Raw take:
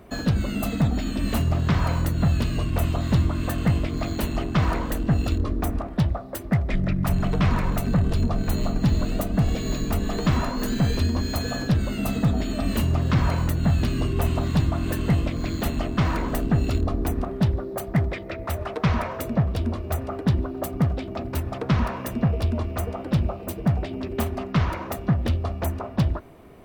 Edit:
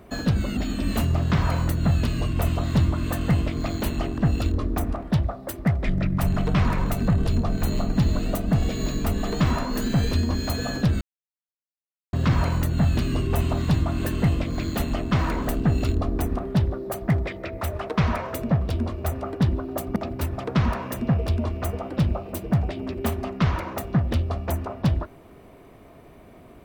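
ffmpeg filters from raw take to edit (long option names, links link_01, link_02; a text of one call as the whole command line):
ffmpeg -i in.wav -filter_complex "[0:a]asplit=6[link_01][link_02][link_03][link_04][link_05][link_06];[link_01]atrim=end=0.572[link_07];[link_02]atrim=start=0.938:end=4.552[link_08];[link_03]atrim=start=5.038:end=11.87,asetpts=PTS-STARTPTS,afade=type=out:start_time=6.828:duration=0.004:curve=hsin[link_09];[link_04]atrim=start=11.87:end=12.99,asetpts=PTS-STARTPTS,volume=0[link_10];[link_05]atrim=start=12.99:end=20.822,asetpts=PTS-STARTPTS,afade=type=in:duration=0.004:curve=hsin[link_11];[link_06]atrim=start=21.098[link_12];[link_07][link_08]acrossfade=duration=0.004:curve1=hsin:curve2=hsin[link_13];[link_09][link_10][link_11]concat=n=3:v=0:a=1[link_14];[link_13][link_14]acrossfade=duration=0.004:curve1=hsin:curve2=hsin[link_15];[link_15][link_12]acrossfade=duration=0.004:curve1=hsin:curve2=hsin" out.wav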